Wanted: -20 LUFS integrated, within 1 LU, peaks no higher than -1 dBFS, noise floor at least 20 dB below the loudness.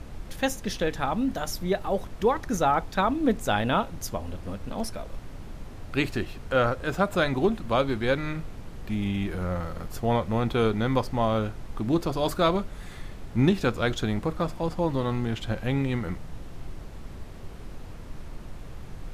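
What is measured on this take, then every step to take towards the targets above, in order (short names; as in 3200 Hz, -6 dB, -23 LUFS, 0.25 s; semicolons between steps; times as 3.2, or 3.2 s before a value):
noise floor -41 dBFS; noise floor target -48 dBFS; loudness -27.5 LUFS; peak -9.0 dBFS; loudness target -20.0 LUFS
-> noise print and reduce 7 dB; gain +7.5 dB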